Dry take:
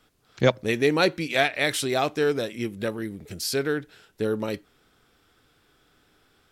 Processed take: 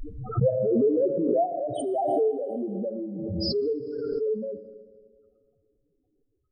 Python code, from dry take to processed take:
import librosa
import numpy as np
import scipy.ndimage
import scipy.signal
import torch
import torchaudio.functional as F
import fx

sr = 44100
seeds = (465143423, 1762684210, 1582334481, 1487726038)

y = fx.high_shelf_res(x, sr, hz=1500.0, db=-9.0, q=1.5)
y = fx.spec_topn(y, sr, count=2)
y = fx.rev_schroeder(y, sr, rt60_s=2.0, comb_ms=27, drr_db=9.5)
y = fx.pre_swell(y, sr, db_per_s=23.0)